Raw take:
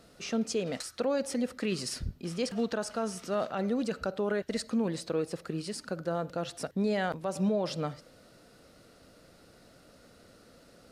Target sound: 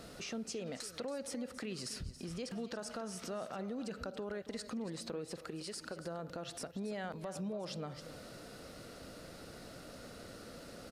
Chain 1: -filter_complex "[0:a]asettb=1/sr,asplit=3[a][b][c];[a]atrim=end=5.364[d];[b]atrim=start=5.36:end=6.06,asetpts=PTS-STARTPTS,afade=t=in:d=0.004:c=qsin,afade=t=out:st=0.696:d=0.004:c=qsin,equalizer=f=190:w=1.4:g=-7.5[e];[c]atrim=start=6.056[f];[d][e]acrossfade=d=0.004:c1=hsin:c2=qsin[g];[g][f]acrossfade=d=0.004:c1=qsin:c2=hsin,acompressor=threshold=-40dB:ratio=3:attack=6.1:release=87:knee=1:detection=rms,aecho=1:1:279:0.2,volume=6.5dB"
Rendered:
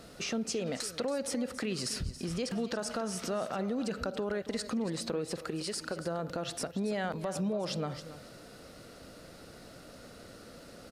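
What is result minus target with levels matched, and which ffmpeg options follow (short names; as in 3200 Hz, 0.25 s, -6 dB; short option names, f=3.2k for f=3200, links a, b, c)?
compressor: peak gain reduction -7.5 dB
-filter_complex "[0:a]asettb=1/sr,asplit=3[a][b][c];[a]atrim=end=5.364[d];[b]atrim=start=5.36:end=6.06,asetpts=PTS-STARTPTS,afade=t=in:d=0.004:c=qsin,afade=t=out:st=0.696:d=0.004:c=qsin,equalizer=f=190:w=1.4:g=-7.5[e];[c]atrim=start=6.056[f];[d][e]acrossfade=d=0.004:c1=hsin:c2=qsin[g];[g][f]acrossfade=d=0.004:c1=qsin:c2=hsin,acompressor=threshold=-51.5dB:ratio=3:attack=6.1:release=87:knee=1:detection=rms,aecho=1:1:279:0.2,volume=6.5dB"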